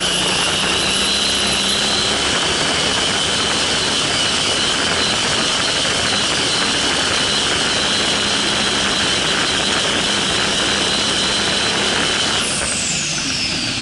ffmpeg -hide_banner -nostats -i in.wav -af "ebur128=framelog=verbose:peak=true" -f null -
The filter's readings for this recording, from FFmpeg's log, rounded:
Integrated loudness:
  I:         -15.1 LUFS
  Threshold: -25.1 LUFS
Loudness range:
  LRA:         0.4 LU
  Threshold: -35.0 LUFS
  LRA low:   -15.2 LUFS
  LRA high:  -14.8 LUFS
True peak:
  Peak:       -3.9 dBFS